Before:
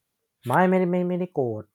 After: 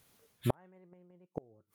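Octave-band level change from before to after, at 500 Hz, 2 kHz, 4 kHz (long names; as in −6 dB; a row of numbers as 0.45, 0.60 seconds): −19.0 dB, −26.0 dB, can't be measured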